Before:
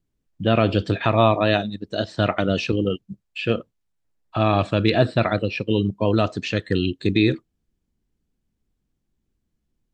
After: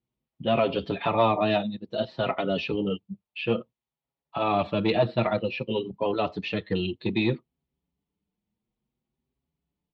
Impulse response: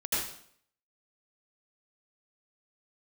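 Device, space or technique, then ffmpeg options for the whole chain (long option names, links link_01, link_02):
barber-pole flanger into a guitar amplifier: -filter_complex "[0:a]asplit=2[link_01][link_02];[link_02]adelay=6,afreqshift=0.57[link_03];[link_01][link_03]amix=inputs=2:normalize=1,asoftclip=type=tanh:threshold=-10.5dB,highpass=86,equalizer=frequency=100:width_type=q:width=4:gain=-9,equalizer=frequency=300:width_type=q:width=4:gain=-5,equalizer=frequency=890:width_type=q:width=4:gain=5,equalizer=frequency=1600:width_type=q:width=4:gain=-9,lowpass=frequency=3900:width=0.5412,lowpass=frequency=3900:width=1.3066"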